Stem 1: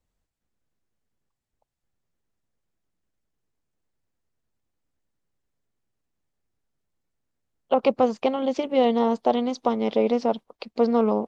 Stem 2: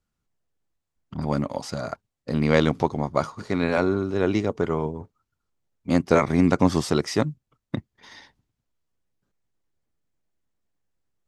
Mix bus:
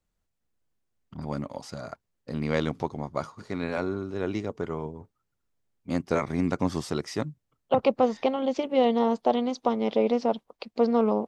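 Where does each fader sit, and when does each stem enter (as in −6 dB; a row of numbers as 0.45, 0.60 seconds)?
−2.0, −7.5 decibels; 0.00, 0.00 seconds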